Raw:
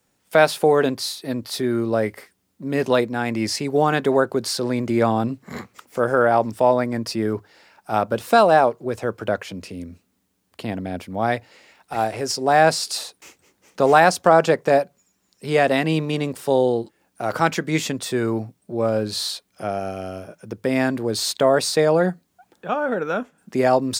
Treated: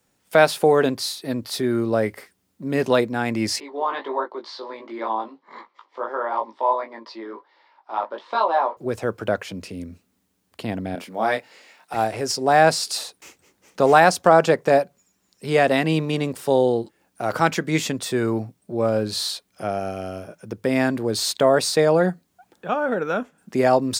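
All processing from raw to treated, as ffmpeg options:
-filter_complex "[0:a]asettb=1/sr,asplit=3[s0][s1][s2];[s0]atrim=end=3.604[s3];[s1]atrim=start=3.6:end=8.77,asetpts=PTS-STARTPTS,afade=t=in:d=0.004:c=qsin,afade=t=out:st=5.166:d=0.004:c=qsin,flanger=delay=3:depth=9.4:regen=-69:speed=1.5:shape=triangular,highpass=f=390:w=0.5412,highpass=f=390:w=1.3066,equalizer=f=460:t=q:w=4:g=-9,equalizer=f=690:t=q:w=4:g=-7,equalizer=f=980:t=q:w=4:g=9,equalizer=f=1500:t=q:w=4:g=-8,equalizer=f=2600:t=q:w=4:g=-10,lowpass=f=3800:w=0.5412,lowpass=f=3800:w=1.3066,asplit=2[s4][s5];[s5]adelay=18,volume=0.631[s6];[s4][s6]amix=inputs=2:normalize=0,atrim=end_sample=227997[s7];[s2]atrim=start=8.766[s8];[s3][s7]acrossfade=d=0.004:c1=hsin:c2=qsin[s9];[s9][s8]acrossfade=d=0.004:c1=qsin:c2=hsin,asettb=1/sr,asplit=3[s10][s11][s12];[s10]atrim=end=10.954[s13];[s11]atrim=start=10.95:end=11.94,asetpts=PTS-STARTPTS,afade=t=in:d=0.004:c=qsin,afade=t=out:st=0.986:d=0.004:c=qsin,highpass=f=140:w=0.5412,highpass=f=140:w=1.3066,lowshelf=f=210:g=-11.5,asplit=2[s14][s15];[s15]adelay=23,volume=0.668[s16];[s14][s16]amix=inputs=2:normalize=0,atrim=end_sample=43659[s17];[s12]atrim=start=11.936[s18];[s13][s17]acrossfade=d=0.004:c1=hsin:c2=qsin[s19];[s19][s18]acrossfade=d=0.004:c1=qsin:c2=hsin"

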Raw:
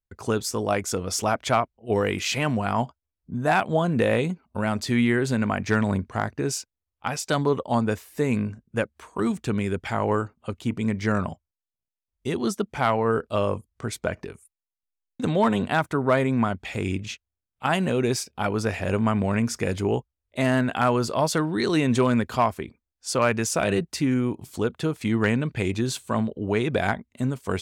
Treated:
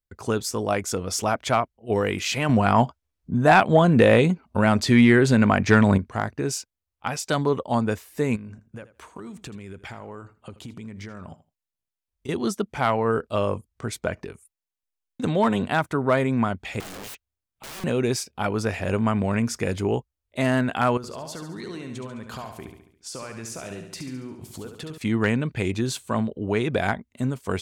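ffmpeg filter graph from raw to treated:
-filter_complex "[0:a]asettb=1/sr,asplit=3[s0][s1][s2];[s0]atrim=end=2.494[s3];[s1]atrim=start=2.49:end=5.98,asetpts=PTS-STARTPTS,afade=t=in:d=0.004:c=qsin,afade=t=out:st=3.486:d=0.004:c=qsin,highshelf=f=9800:g=-8,acontrast=66[s4];[s2]atrim=start=5.976[s5];[s3][s4]acrossfade=d=0.004:c1=hsin:c2=qsin[s6];[s6][s5]acrossfade=d=0.004:c1=qsin:c2=hsin,asettb=1/sr,asplit=3[s7][s8][s9];[s7]atrim=end=8.364[s10];[s8]atrim=start=8.36:end=12.29,asetpts=PTS-STARTPTS,afade=t=in:d=0.004:c=qsin,afade=t=out:st=3.926:d=0.004:c=qsin,acompressor=threshold=0.02:ratio=16:attack=3.2:release=140:knee=1:detection=peak,aecho=1:1:81|162:0.158|0.0269,atrim=end_sample=173313[s11];[s9]atrim=start=12.286[s12];[s10][s11]acrossfade=d=0.004:c1=hsin:c2=qsin[s13];[s13][s12]acrossfade=d=0.004:c1=qsin:c2=hsin,asettb=1/sr,asplit=3[s14][s15][s16];[s14]atrim=end=16.804[s17];[s15]atrim=start=16.8:end=17.84,asetpts=PTS-STARTPTS,afade=t=in:d=0.004:c=qsin,afade=t=out:st=1.036:d=0.004:c=qsin,acompressor=threshold=0.0447:ratio=16:attack=3.2:release=140:knee=1:detection=peak,aeval=exprs='(mod(47.3*val(0)+1,2)-1)/47.3':c=same[s18];[s16]atrim=start=17.836[s19];[s17][s18]acrossfade=d=0.004:c1=hsin:c2=qsin[s20];[s20][s19]acrossfade=d=0.004:c1=qsin:c2=hsin,asettb=1/sr,asplit=3[s21][s22][s23];[s21]atrim=end=20.974[s24];[s22]atrim=start=20.97:end=24.98,asetpts=PTS-STARTPTS,afade=t=in:d=0.004:c=qsin,afade=t=out:st=4.006:d=0.004:c=qsin,acompressor=threshold=0.0224:ratio=8:attack=3.2:release=140:knee=1:detection=peak,aecho=1:1:70|140|210|280|350|420:0.447|0.232|0.121|0.0628|0.0327|0.017,atrim=end_sample=176841[s25];[s23]atrim=start=24.976[s26];[s24][s25]acrossfade=d=0.004:c1=hsin:c2=qsin[s27];[s27][s26]acrossfade=d=0.004:c1=qsin:c2=hsin"

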